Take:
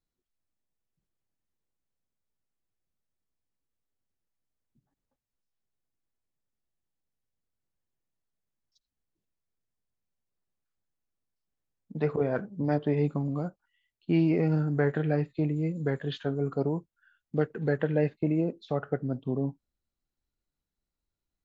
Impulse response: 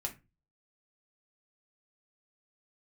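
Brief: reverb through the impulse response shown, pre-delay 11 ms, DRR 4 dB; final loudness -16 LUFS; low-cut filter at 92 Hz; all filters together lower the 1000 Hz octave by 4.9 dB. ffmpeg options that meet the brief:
-filter_complex "[0:a]highpass=92,equalizer=f=1k:t=o:g=-8,asplit=2[a][b];[1:a]atrim=start_sample=2205,adelay=11[c];[b][c]afir=irnorm=-1:irlink=0,volume=-4.5dB[d];[a][d]amix=inputs=2:normalize=0,volume=12.5dB"

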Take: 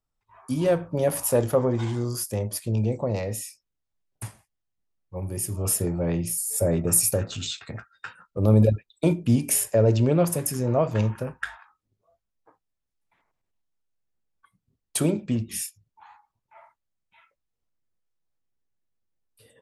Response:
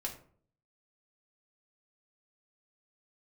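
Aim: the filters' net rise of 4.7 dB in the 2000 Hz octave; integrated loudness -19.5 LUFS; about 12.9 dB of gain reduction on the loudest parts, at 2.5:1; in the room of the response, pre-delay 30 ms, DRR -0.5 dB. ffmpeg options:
-filter_complex "[0:a]equalizer=f=2k:t=o:g=6,acompressor=threshold=-34dB:ratio=2.5,asplit=2[a][b];[1:a]atrim=start_sample=2205,adelay=30[c];[b][c]afir=irnorm=-1:irlink=0,volume=0dB[d];[a][d]amix=inputs=2:normalize=0,volume=11.5dB"

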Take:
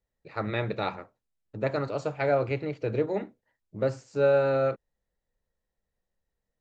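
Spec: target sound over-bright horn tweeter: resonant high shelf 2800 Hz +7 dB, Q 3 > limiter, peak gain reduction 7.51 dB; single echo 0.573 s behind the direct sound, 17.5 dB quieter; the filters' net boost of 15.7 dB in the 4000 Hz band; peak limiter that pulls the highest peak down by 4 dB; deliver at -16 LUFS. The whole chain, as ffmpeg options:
-af "equalizer=f=4k:t=o:g=4,alimiter=limit=-17.5dB:level=0:latency=1,highshelf=f=2.8k:t=q:w=3:g=7,aecho=1:1:573:0.133,volume=17.5dB,alimiter=limit=-4.5dB:level=0:latency=1"

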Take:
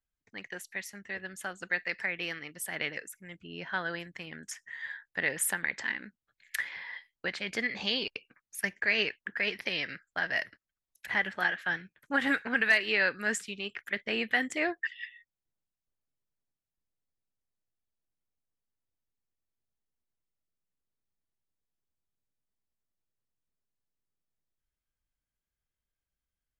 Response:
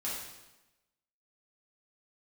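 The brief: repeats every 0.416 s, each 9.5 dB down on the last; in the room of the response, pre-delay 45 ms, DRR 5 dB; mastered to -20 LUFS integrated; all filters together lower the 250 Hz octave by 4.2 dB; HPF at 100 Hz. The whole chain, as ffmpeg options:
-filter_complex "[0:a]highpass=100,equalizer=f=250:t=o:g=-5,aecho=1:1:416|832|1248|1664:0.335|0.111|0.0365|0.012,asplit=2[a][b];[1:a]atrim=start_sample=2205,adelay=45[c];[b][c]afir=irnorm=-1:irlink=0,volume=-8.5dB[d];[a][d]amix=inputs=2:normalize=0,volume=11dB"

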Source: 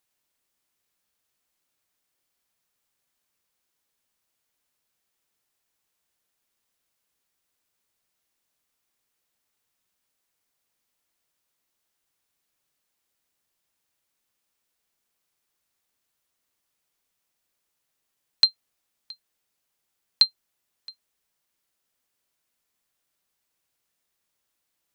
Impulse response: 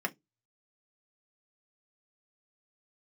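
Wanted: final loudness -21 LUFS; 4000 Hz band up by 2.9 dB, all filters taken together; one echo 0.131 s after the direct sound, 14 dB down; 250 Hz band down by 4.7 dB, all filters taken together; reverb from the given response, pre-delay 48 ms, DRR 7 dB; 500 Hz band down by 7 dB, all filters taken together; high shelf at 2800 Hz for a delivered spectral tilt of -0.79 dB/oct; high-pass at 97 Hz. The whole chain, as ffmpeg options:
-filter_complex "[0:a]highpass=97,equalizer=f=250:t=o:g=-3.5,equalizer=f=500:t=o:g=-8,highshelf=f=2.8k:g=-8.5,equalizer=f=4k:t=o:g=9,aecho=1:1:131:0.2,asplit=2[a][b];[1:a]atrim=start_sample=2205,adelay=48[c];[b][c]afir=irnorm=-1:irlink=0,volume=-13dB[d];[a][d]amix=inputs=2:normalize=0,volume=-1dB"

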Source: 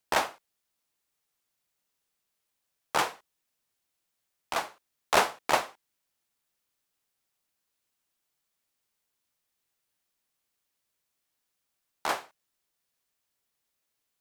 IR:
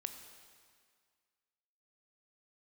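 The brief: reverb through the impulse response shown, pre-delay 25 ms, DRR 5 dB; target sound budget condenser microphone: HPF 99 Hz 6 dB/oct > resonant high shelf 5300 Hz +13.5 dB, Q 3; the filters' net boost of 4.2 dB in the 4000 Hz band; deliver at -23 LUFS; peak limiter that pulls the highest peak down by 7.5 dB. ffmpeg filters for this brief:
-filter_complex "[0:a]equalizer=f=4k:t=o:g=7,alimiter=limit=-13dB:level=0:latency=1,asplit=2[a][b];[1:a]atrim=start_sample=2205,adelay=25[c];[b][c]afir=irnorm=-1:irlink=0,volume=-3dB[d];[a][d]amix=inputs=2:normalize=0,highpass=f=99:p=1,highshelf=f=5.3k:t=q:w=3:g=13.5,volume=1dB"

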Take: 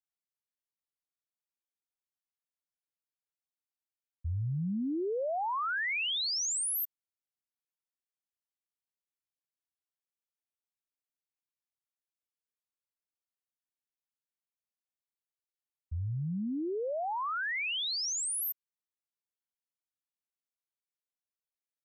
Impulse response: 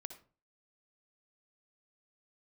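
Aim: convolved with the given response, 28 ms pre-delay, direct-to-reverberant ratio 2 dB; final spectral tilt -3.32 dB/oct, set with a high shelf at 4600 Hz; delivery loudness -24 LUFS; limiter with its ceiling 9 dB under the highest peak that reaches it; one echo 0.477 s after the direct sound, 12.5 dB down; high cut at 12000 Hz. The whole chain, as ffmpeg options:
-filter_complex "[0:a]lowpass=12k,highshelf=f=4.6k:g=8.5,alimiter=level_in=8dB:limit=-24dB:level=0:latency=1,volume=-8dB,aecho=1:1:477:0.237,asplit=2[a][b];[1:a]atrim=start_sample=2205,adelay=28[c];[b][c]afir=irnorm=-1:irlink=0,volume=2dB[d];[a][d]amix=inputs=2:normalize=0,volume=8dB"

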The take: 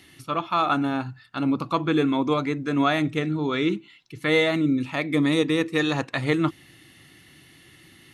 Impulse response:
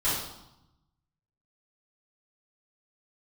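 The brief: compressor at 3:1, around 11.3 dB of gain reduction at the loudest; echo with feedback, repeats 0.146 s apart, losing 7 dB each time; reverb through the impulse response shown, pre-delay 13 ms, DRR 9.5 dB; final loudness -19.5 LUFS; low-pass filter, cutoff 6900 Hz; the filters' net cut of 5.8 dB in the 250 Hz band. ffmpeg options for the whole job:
-filter_complex "[0:a]lowpass=6.9k,equalizer=f=250:t=o:g=-7.5,acompressor=threshold=-34dB:ratio=3,aecho=1:1:146|292|438|584|730:0.447|0.201|0.0905|0.0407|0.0183,asplit=2[a][b];[1:a]atrim=start_sample=2205,adelay=13[c];[b][c]afir=irnorm=-1:irlink=0,volume=-20.5dB[d];[a][d]amix=inputs=2:normalize=0,volume=14.5dB"

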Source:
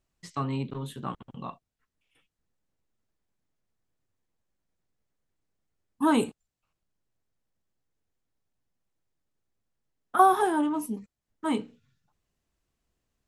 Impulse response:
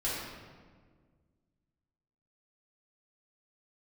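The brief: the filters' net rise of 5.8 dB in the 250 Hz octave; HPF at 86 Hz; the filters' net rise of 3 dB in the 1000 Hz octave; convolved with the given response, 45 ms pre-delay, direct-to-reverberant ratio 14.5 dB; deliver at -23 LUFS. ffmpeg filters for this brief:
-filter_complex "[0:a]highpass=86,equalizer=f=250:t=o:g=7,equalizer=f=1k:t=o:g=3.5,asplit=2[a][b];[1:a]atrim=start_sample=2205,adelay=45[c];[b][c]afir=irnorm=-1:irlink=0,volume=-21dB[d];[a][d]amix=inputs=2:normalize=0,volume=1dB"

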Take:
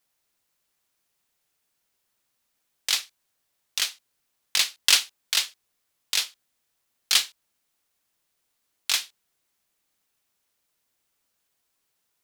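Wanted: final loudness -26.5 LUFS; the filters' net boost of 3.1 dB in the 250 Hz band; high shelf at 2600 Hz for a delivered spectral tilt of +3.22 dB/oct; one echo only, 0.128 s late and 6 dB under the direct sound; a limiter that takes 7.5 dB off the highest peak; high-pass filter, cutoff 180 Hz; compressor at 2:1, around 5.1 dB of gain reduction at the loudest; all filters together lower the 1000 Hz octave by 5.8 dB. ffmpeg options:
-af "highpass=180,equalizer=f=250:t=o:g=6,equalizer=f=1k:t=o:g=-9,highshelf=f=2.6k:g=3,acompressor=threshold=-21dB:ratio=2,alimiter=limit=-9.5dB:level=0:latency=1,aecho=1:1:128:0.501,volume=0.5dB"

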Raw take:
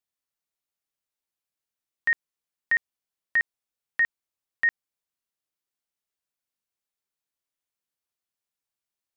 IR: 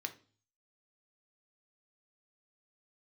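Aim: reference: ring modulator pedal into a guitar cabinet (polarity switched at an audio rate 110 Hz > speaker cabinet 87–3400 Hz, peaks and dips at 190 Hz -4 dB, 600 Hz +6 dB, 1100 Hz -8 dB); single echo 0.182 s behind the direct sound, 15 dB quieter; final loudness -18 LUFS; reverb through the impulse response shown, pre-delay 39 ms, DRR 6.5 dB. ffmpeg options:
-filter_complex "[0:a]aecho=1:1:182:0.178,asplit=2[a][b];[1:a]atrim=start_sample=2205,adelay=39[c];[b][c]afir=irnorm=-1:irlink=0,volume=-6dB[d];[a][d]amix=inputs=2:normalize=0,aeval=exprs='val(0)*sgn(sin(2*PI*110*n/s))':c=same,highpass=87,equalizer=f=190:t=q:w=4:g=-4,equalizer=f=600:t=q:w=4:g=6,equalizer=f=1.1k:t=q:w=4:g=-8,lowpass=f=3.4k:w=0.5412,lowpass=f=3.4k:w=1.3066,volume=9.5dB"

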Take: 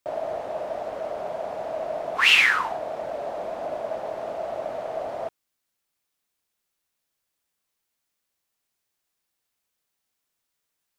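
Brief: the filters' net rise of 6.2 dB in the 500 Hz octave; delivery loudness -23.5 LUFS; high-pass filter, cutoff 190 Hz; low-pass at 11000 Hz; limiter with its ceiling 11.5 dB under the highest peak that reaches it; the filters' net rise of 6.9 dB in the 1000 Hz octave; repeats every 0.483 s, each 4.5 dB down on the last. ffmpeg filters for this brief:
-af "highpass=190,lowpass=11k,equalizer=f=500:t=o:g=5,equalizer=f=1k:t=o:g=7.5,alimiter=limit=-17dB:level=0:latency=1,aecho=1:1:483|966|1449|1932|2415|2898|3381|3864|4347:0.596|0.357|0.214|0.129|0.0772|0.0463|0.0278|0.0167|0.01,volume=1dB"

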